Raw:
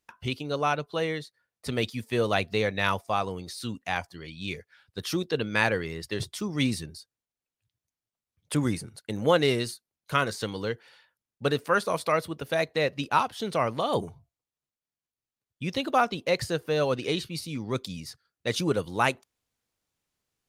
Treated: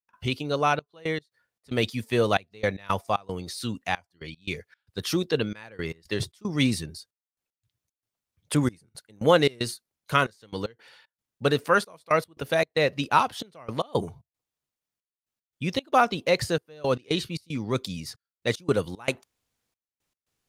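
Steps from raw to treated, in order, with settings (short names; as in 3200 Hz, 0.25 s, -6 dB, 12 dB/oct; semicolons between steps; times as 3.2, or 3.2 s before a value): step gate ".xxxxx..x.xx" 114 bpm -24 dB; gain +3 dB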